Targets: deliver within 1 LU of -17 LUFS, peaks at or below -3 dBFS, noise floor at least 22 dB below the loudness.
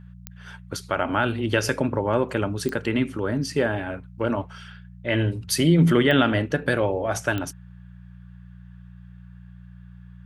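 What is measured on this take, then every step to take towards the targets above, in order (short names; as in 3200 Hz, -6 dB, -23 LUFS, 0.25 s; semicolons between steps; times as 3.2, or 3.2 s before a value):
clicks 4; hum 60 Hz; harmonics up to 180 Hz; hum level -40 dBFS; loudness -23.5 LUFS; peak -5.0 dBFS; loudness target -17.0 LUFS
-> de-click; de-hum 60 Hz, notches 3; gain +6.5 dB; limiter -3 dBFS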